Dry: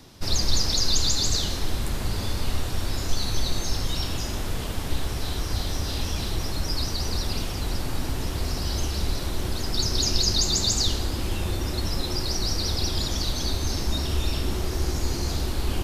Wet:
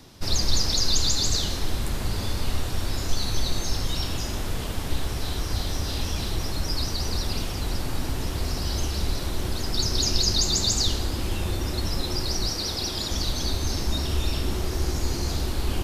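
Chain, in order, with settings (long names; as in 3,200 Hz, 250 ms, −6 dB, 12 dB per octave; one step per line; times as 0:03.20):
0:12.49–0:13.11: low-shelf EQ 120 Hz −10.5 dB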